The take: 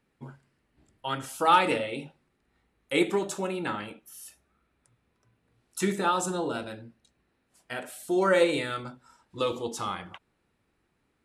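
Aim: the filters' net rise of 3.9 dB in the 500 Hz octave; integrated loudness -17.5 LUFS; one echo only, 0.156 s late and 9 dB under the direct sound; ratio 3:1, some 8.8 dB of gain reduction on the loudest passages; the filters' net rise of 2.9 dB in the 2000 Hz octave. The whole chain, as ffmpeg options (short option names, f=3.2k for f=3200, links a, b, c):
-af "equalizer=f=500:t=o:g=4.5,equalizer=f=2k:t=o:g=3.5,acompressor=threshold=-25dB:ratio=3,aecho=1:1:156:0.355,volume=13dB"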